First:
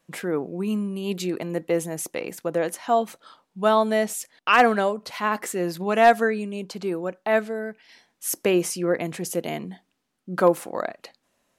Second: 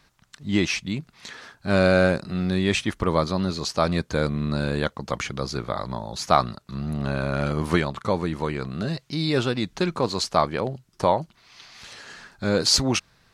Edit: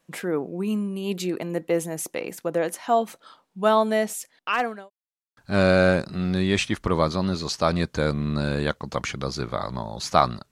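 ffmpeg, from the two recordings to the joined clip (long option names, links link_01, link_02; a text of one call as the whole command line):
ffmpeg -i cue0.wav -i cue1.wav -filter_complex "[0:a]apad=whole_dur=10.51,atrim=end=10.51,asplit=2[link_01][link_02];[link_01]atrim=end=4.9,asetpts=PTS-STARTPTS,afade=type=out:start_time=3.72:duration=1.18:curve=qsin[link_03];[link_02]atrim=start=4.9:end=5.37,asetpts=PTS-STARTPTS,volume=0[link_04];[1:a]atrim=start=1.53:end=6.67,asetpts=PTS-STARTPTS,afade=type=in:duration=0.004:curve=hsin[link_05];[link_03][link_04][link_05]concat=n=3:v=0:a=1" out.wav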